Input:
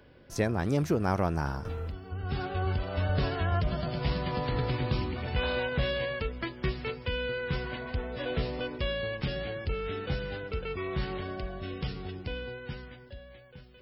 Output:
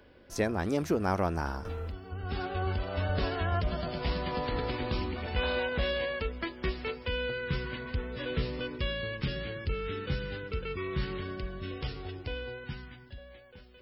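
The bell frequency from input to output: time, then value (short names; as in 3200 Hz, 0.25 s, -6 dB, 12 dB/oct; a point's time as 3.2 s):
bell -13.5 dB 0.44 oct
130 Hz
from 7.3 s 710 Hz
from 11.71 s 180 Hz
from 12.64 s 530 Hz
from 13.18 s 140 Hz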